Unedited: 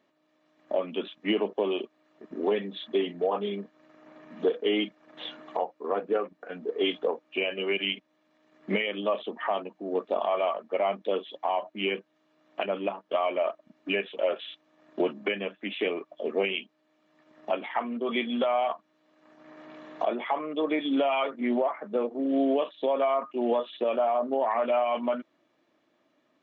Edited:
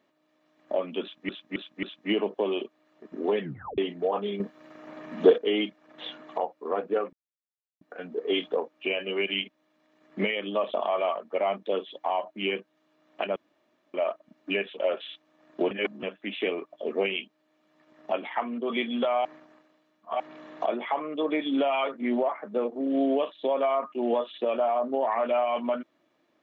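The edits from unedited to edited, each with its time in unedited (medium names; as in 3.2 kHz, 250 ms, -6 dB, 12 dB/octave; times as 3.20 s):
1.02–1.29 s: loop, 4 plays
2.60 s: tape stop 0.37 s
3.59–4.57 s: gain +8 dB
6.32 s: insert silence 0.68 s
9.25–10.13 s: delete
12.75–13.33 s: room tone
15.10–15.42 s: reverse
18.64–19.59 s: reverse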